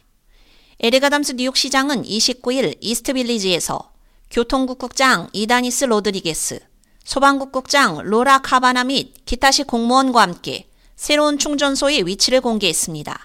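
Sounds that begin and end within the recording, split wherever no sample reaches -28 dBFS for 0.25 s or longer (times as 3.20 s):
0.80–3.81 s
4.31–6.58 s
7.08–10.59 s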